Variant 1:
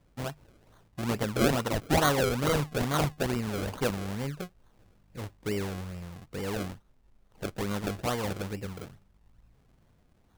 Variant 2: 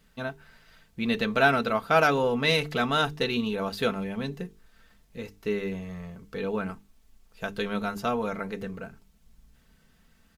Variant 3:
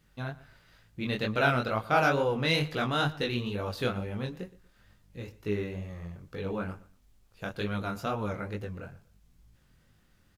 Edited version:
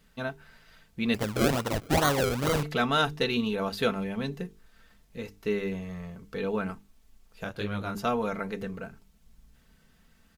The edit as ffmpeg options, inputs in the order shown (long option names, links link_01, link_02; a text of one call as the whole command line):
ffmpeg -i take0.wav -i take1.wav -i take2.wav -filter_complex "[1:a]asplit=3[link_01][link_02][link_03];[link_01]atrim=end=1.142[link_04];[0:a]atrim=start=1.138:end=2.632[link_05];[link_02]atrim=start=2.628:end=7.442[link_06];[2:a]atrim=start=7.438:end=7.952[link_07];[link_03]atrim=start=7.948[link_08];[link_04][link_05]acrossfade=duration=0.004:curve1=hsin:curve2=hsin[link_09];[link_09][link_06]acrossfade=duration=0.004:curve1=hsin:curve2=hsin[link_10];[link_10][link_07]acrossfade=duration=0.004:curve1=hsin:curve2=hsin[link_11];[link_11][link_08]acrossfade=duration=0.004:curve1=hsin:curve2=hsin" out.wav